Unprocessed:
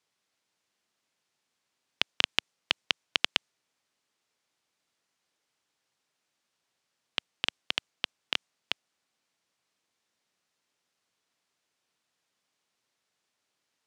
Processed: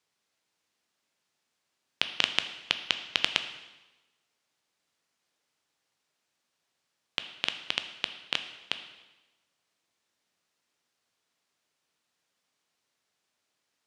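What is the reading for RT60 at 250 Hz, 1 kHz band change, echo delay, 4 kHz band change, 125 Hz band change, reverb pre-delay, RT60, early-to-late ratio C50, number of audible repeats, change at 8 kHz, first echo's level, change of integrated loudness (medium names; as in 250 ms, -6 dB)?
1.1 s, +0.5 dB, no echo, +0.5 dB, +0.5 dB, 6 ms, 1.1 s, 10.5 dB, no echo, +0.5 dB, no echo, +0.5 dB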